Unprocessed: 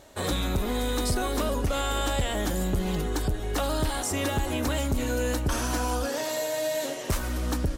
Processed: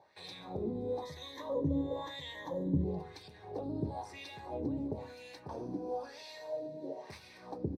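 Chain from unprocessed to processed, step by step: 1.02–2.84 ripple EQ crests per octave 1.1, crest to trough 15 dB; speakerphone echo 0.2 s, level -14 dB; dynamic EQ 1800 Hz, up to -7 dB, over -43 dBFS, Q 0.76; wah 1 Hz 270–2700 Hz, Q 2.5; reverb RT60 0.30 s, pre-delay 4 ms, DRR 9 dB; gain -8 dB

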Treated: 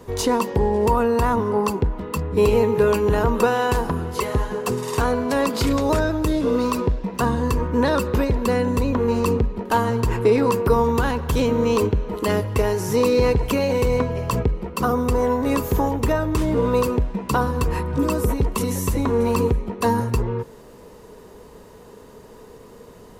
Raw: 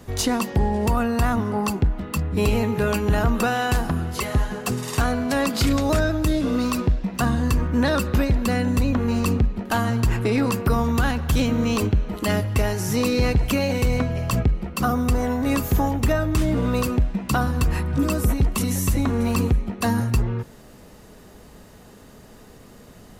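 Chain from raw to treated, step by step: small resonant body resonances 450/960 Hz, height 12 dB, ringing for 25 ms; gain -2 dB

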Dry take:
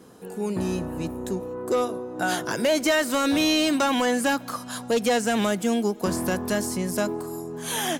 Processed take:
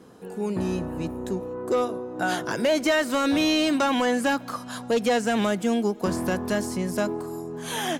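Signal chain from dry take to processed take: high shelf 6400 Hz -8.5 dB

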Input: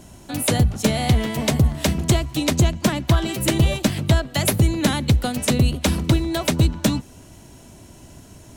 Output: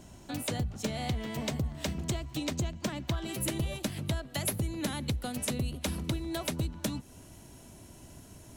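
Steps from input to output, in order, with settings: compressor 2.5:1, threshold -26 dBFS, peak gain reduction 9.5 dB; bell 11000 Hz -9.5 dB 0.31 oct, from 3.24 s +6.5 dB; gain -7 dB

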